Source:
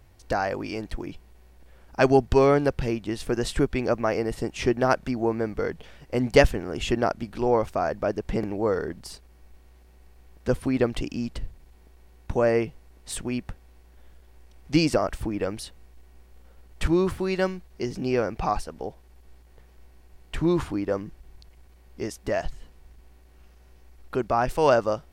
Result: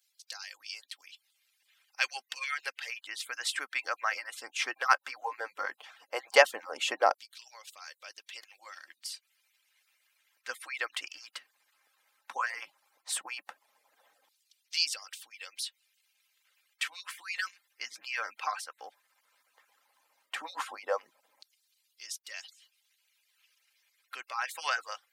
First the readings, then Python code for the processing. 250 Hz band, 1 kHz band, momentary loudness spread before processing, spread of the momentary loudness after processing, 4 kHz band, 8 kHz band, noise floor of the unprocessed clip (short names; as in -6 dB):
-34.0 dB, -6.0 dB, 16 LU, 20 LU, +1.5 dB, +0.5 dB, -53 dBFS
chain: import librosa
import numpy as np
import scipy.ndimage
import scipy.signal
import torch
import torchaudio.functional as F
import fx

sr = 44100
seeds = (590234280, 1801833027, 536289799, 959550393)

y = fx.hpss_only(x, sr, part='percussive')
y = scipy.signal.sosfilt(scipy.signal.butter(2, 170.0, 'highpass', fs=sr, output='sos'), y)
y = fx.low_shelf(y, sr, hz=320.0, db=-8.0)
y = y + 0.36 * np.pad(y, (int(3.8 * sr / 1000.0), 0))[:len(y)]
y = fx.filter_lfo_highpass(y, sr, shape='saw_down', hz=0.14, low_hz=680.0, high_hz=4200.0, q=1.4)